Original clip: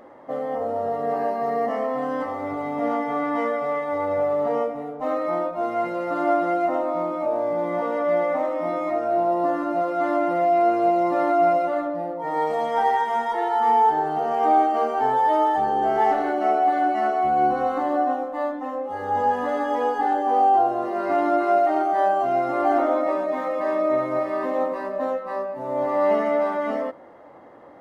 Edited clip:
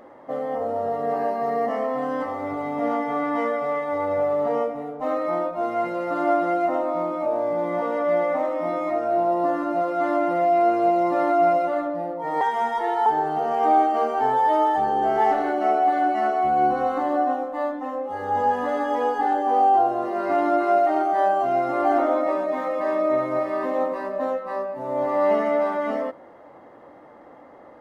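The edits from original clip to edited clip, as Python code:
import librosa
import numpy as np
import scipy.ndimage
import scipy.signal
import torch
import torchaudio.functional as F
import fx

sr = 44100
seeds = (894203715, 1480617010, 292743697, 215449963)

y = fx.edit(x, sr, fx.cut(start_s=12.41, length_s=0.54),
    fx.cut(start_s=13.6, length_s=0.26), tone=tone)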